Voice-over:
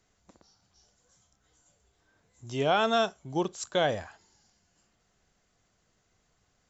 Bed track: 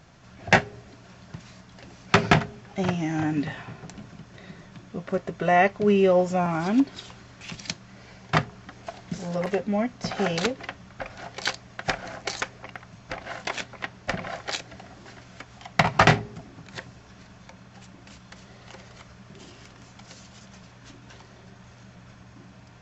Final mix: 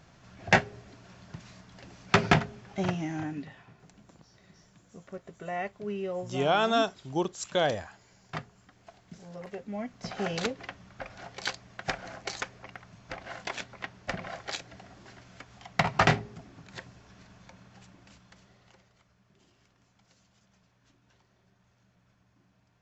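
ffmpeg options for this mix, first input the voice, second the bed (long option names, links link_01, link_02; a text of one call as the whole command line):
ffmpeg -i stem1.wav -i stem2.wav -filter_complex "[0:a]adelay=3800,volume=0dB[link_01];[1:a]volume=6dB,afade=type=out:start_time=2.83:duration=0.66:silence=0.266073,afade=type=in:start_time=9.52:duration=0.87:silence=0.334965,afade=type=out:start_time=17.62:duration=1.3:silence=0.211349[link_02];[link_01][link_02]amix=inputs=2:normalize=0" out.wav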